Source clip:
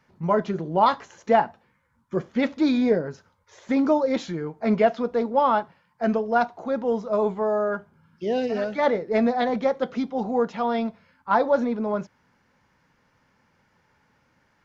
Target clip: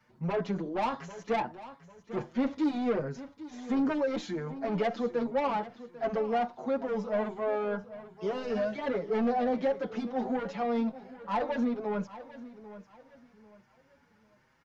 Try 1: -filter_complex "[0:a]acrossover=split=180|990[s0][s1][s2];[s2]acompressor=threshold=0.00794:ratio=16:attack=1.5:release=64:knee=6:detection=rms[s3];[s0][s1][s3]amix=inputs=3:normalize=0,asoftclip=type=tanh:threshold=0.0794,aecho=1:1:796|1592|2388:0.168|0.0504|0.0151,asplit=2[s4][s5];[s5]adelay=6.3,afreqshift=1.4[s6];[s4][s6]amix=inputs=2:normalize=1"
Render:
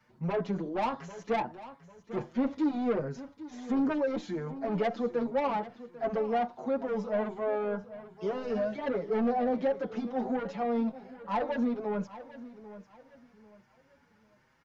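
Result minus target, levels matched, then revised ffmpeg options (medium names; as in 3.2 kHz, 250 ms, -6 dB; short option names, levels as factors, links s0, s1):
compression: peak gain reduction +7.5 dB
-filter_complex "[0:a]acrossover=split=180|990[s0][s1][s2];[s2]acompressor=threshold=0.02:ratio=16:attack=1.5:release=64:knee=6:detection=rms[s3];[s0][s1][s3]amix=inputs=3:normalize=0,asoftclip=type=tanh:threshold=0.0794,aecho=1:1:796|1592|2388:0.168|0.0504|0.0151,asplit=2[s4][s5];[s5]adelay=6.3,afreqshift=1.4[s6];[s4][s6]amix=inputs=2:normalize=1"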